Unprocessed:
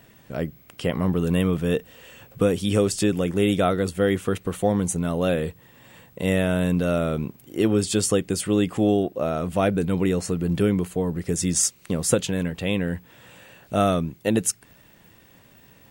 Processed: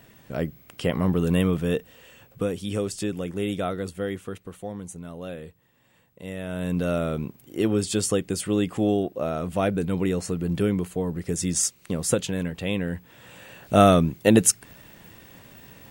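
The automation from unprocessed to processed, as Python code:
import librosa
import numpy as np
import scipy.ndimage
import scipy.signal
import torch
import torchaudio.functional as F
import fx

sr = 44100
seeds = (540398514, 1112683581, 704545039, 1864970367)

y = fx.gain(x, sr, db=fx.line((1.41, 0.0), (2.56, -7.0), (3.89, -7.0), (4.65, -13.5), (6.35, -13.5), (6.79, -2.5), (12.92, -2.5), (13.74, 5.0)))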